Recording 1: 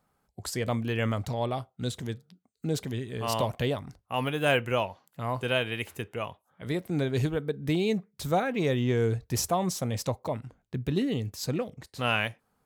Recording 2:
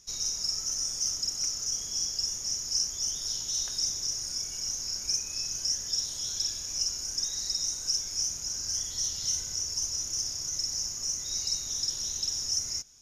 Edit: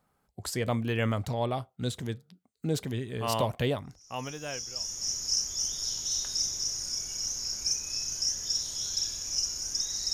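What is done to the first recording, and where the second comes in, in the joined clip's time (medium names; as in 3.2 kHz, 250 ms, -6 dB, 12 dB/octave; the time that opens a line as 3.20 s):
recording 1
4.42 s: go over to recording 2 from 1.85 s, crossfade 1.34 s quadratic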